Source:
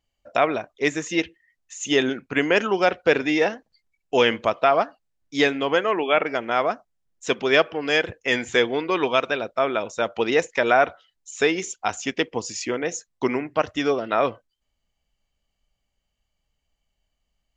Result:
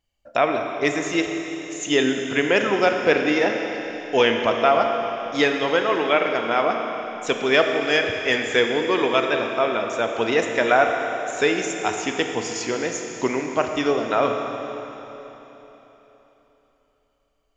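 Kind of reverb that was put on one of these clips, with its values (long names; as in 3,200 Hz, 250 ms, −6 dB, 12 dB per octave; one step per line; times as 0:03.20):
four-comb reverb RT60 3.7 s, combs from 27 ms, DRR 3.5 dB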